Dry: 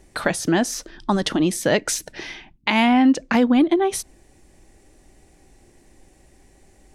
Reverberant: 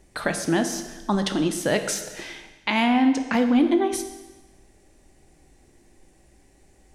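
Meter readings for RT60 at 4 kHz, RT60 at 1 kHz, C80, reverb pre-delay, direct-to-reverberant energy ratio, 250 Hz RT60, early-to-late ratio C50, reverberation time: 1.2 s, 1.2 s, 10.5 dB, 14 ms, 7.0 dB, 1.2 s, 9.0 dB, 1.2 s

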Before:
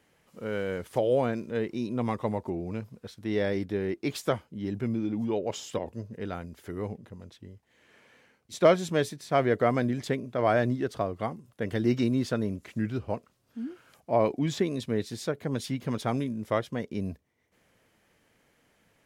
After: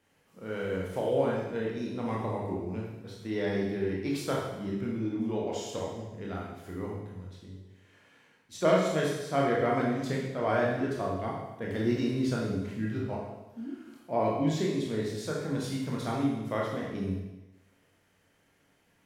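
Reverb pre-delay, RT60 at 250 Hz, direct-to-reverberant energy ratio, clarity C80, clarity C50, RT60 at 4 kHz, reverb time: 21 ms, 0.95 s, −4.0 dB, 4.0 dB, 1.5 dB, 1.0 s, 1.0 s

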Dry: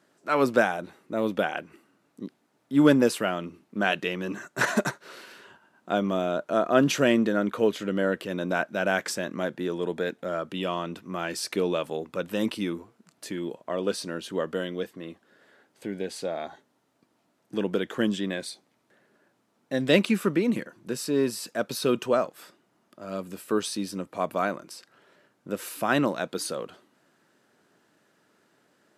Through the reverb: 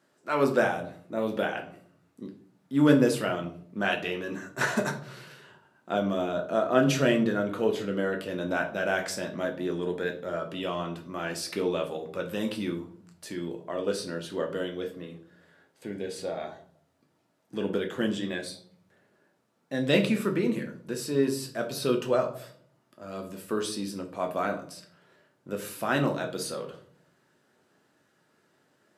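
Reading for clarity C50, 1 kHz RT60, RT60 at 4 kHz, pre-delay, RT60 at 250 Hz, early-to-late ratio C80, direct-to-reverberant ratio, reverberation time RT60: 11.0 dB, 0.45 s, 0.35 s, 8 ms, 0.95 s, 15.0 dB, 2.5 dB, 0.55 s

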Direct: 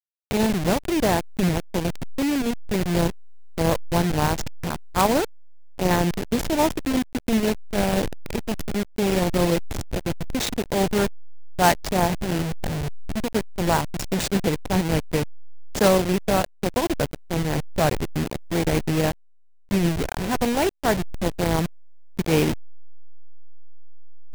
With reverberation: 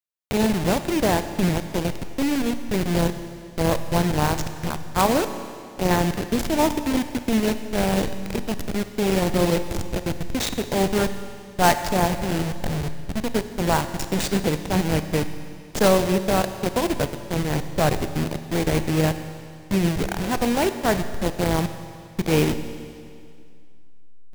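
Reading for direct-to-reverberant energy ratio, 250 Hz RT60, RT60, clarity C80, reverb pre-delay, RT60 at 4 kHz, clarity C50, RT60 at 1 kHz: 9.5 dB, 2.3 s, 2.3 s, 11.0 dB, 27 ms, 2.2 s, 10.0 dB, 2.3 s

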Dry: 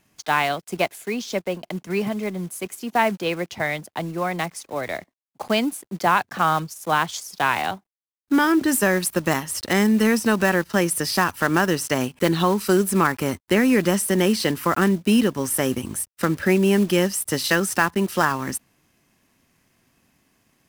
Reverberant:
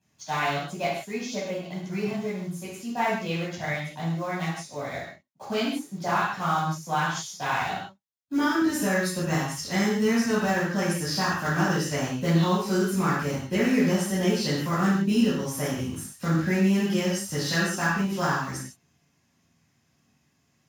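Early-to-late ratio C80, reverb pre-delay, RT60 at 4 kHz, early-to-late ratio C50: 3.5 dB, 3 ms, can't be measured, 0.0 dB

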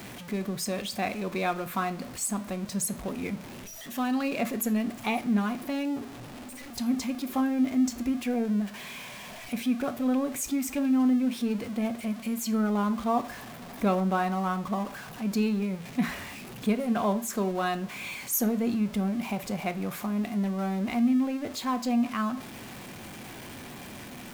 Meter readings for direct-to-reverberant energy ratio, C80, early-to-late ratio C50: 10.5 dB, 22.0 dB, 17.5 dB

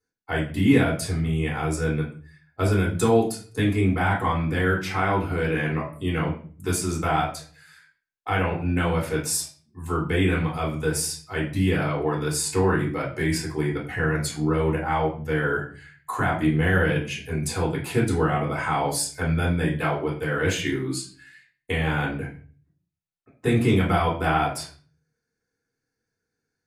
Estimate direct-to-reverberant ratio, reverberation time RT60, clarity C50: −5.5 dB, 0.40 s, 7.0 dB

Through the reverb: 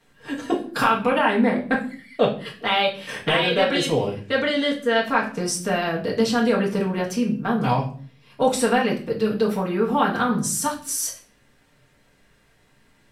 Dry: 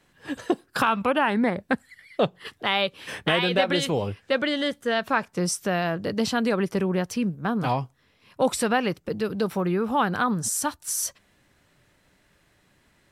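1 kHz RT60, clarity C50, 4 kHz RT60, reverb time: 0.40 s, 9.5 dB, 0.40 s, 0.45 s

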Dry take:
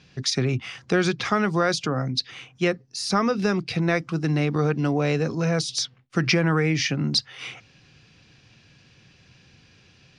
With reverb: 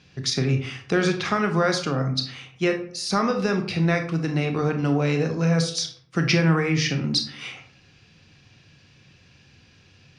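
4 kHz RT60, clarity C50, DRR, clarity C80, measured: 0.35 s, 9.0 dB, 5.0 dB, 13.0 dB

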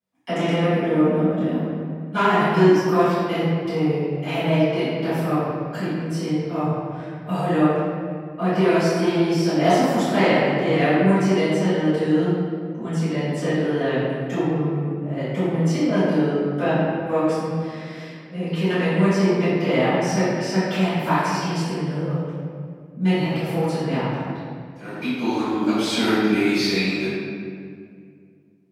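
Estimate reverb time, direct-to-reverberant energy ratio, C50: 2.2 s, −17.0 dB, −3.5 dB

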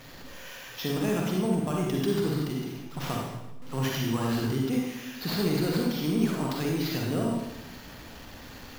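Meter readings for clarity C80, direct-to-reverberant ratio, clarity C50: 3.0 dB, −2.0 dB, −0.5 dB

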